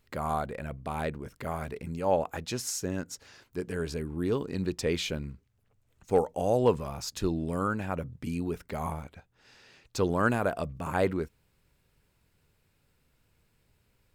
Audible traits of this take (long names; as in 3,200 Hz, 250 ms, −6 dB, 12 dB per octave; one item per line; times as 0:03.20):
background noise floor −71 dBFS
spectral slope −5.5 dB per octave